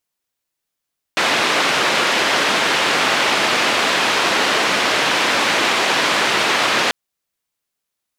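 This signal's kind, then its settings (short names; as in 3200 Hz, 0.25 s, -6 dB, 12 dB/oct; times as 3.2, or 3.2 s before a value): noise band 250–2900 Hz, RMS -17 dBFS 5.74 s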